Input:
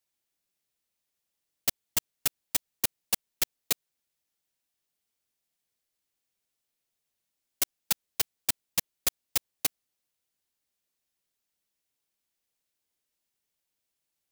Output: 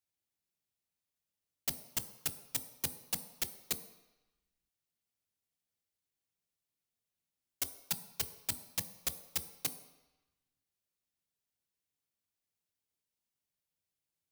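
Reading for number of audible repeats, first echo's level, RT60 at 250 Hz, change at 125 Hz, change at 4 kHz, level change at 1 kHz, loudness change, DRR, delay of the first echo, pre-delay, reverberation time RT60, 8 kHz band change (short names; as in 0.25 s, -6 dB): none, none, 0.80 s, -1.0 dB, -8.0 dB, -7.5 dB, -7.5 dB, 10.0 dB, none, 15 ms, 1.0 s, -7.5 dB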